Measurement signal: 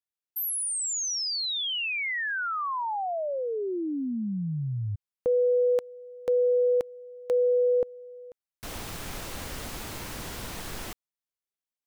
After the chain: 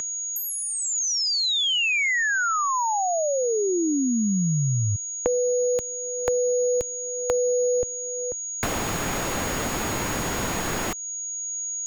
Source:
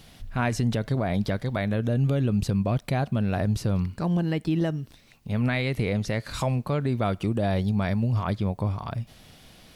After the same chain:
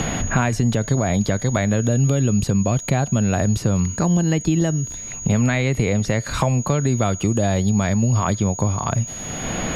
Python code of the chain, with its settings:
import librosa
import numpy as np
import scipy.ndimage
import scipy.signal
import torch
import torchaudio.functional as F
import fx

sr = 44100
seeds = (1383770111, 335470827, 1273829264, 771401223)

y = x + 10.0 ** (-39.0 / 20.0) * np.sin(2.0 * np.pi * 6700.0 * np.arange(len(x)) / sr)
y = fx.band_squash(y, sr, depth_pct=100)
y = F.gain(torch.from_numpy(y), 5.5).numpy()